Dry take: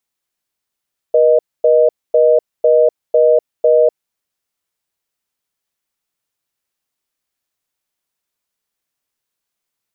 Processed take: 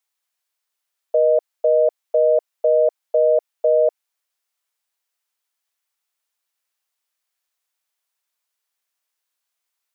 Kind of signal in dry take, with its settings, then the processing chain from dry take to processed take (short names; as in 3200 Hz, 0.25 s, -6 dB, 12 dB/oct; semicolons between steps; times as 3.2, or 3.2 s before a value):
call progress tone reorder tone, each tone -10 dBFS 2.92 s
HPF 660 Hz 12 dB/oct